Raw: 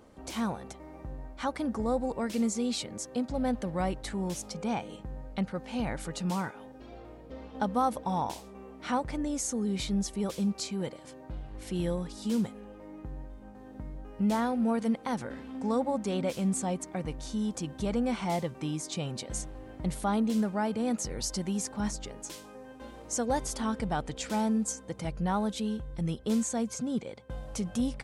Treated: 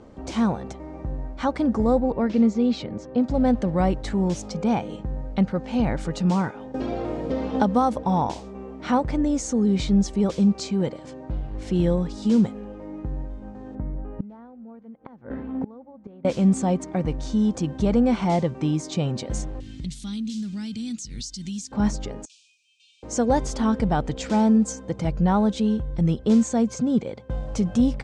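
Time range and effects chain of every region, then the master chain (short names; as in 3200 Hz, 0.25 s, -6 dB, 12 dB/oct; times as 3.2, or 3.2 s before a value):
2–3.21 air absorption 160 m + mismatched tape noise reduction decoder only
6.74–8.03 high shelf 6500 Hz +6.5 dB + three-band squash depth 70%
13.75–16.25 LPF 1800 Hz + flipped gate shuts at -26 dBFS, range -25 dB
19.6–21.72 EQ curve 250 Hz 0 dB, 540 Hz -24 dB, 930 Hz -20 dB, 3600 Hz +15 dB + compressor 3:1, threshold -41 dBFS
22.25–23.03 brick-wall FIR band-pass 2300–10000 Hz + compressor 3:1, threshold -55 dBFS
whole clip: LPF 7500 Hz 24 dB/oct; tilt shelf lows +4 dB, about 840 Hz; gain +7 dB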